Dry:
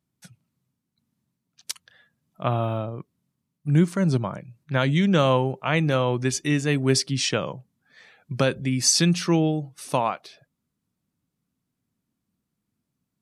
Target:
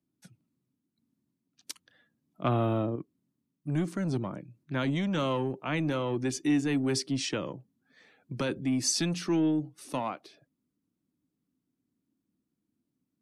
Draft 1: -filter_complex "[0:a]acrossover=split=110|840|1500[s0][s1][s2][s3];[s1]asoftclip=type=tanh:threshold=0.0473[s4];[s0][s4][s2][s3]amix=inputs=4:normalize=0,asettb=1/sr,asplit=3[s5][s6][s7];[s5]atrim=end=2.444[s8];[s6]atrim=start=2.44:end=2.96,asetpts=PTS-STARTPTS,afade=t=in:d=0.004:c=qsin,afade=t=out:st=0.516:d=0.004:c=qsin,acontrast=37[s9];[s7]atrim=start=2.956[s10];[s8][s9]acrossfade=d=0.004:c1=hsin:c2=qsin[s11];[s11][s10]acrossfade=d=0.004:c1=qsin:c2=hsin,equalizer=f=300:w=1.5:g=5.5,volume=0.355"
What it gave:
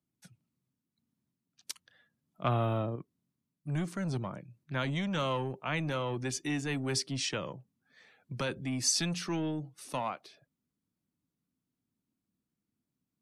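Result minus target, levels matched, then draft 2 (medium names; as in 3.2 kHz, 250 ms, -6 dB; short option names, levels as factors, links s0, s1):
250 Hz band -3.5 dB
-filter_complex "[0:a]acrossover=split=110|840|1500[s0][s1][s2][s3];[s1]asoftclip=type=tanh:threshold=0.0473[s4];[s0][s4][s2][s3]amix=inputs=4:normalize=0,asettb=1/sr,asplit=3[s5][s6][s7];[s5]atrim=end=2.444[s8];[s6]atrim=start=2.44:end=2.96,asetpts=PTS-STARTPTS,afade=t=in:d=0.004:c=qsin,afade=t=out:st=0.516:d=0.004:c=qsin,acontrast=37[s9];[s7]atrim=start=2.956[s10];[s8][s9]acrossfade=d=0.004:c1=hsin:c2=qsin[s11];[s11][s10]acrossfade=d=0.004:c1=qsin:c2=hsin,equalizer=f=300:w=1.5:g=15,volume=0.355"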